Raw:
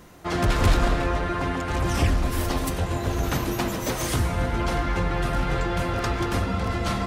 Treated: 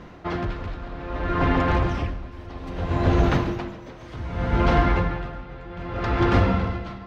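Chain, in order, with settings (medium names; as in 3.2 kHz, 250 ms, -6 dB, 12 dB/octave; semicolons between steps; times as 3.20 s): distance through air 230 m; Schroeder reverb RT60 3.5 s, combs from 31 ms, DRR 8 dB; logarithmic tremolo 0.63 Hz, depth 21 dB; trim +7 dB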